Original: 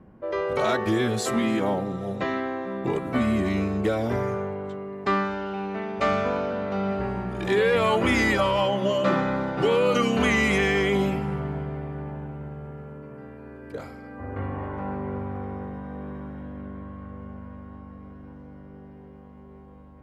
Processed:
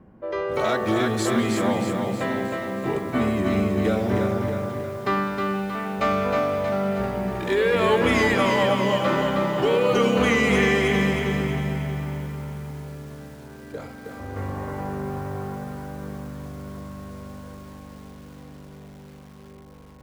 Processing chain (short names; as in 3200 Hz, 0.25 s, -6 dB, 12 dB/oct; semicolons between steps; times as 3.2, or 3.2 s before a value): echo with dull and thin repeats by turns 0.102 s, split 1000 Hz, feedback 56%, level -11 dB; lo-fi delay 0.315 s, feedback 55%, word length 8-bit, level -4 dB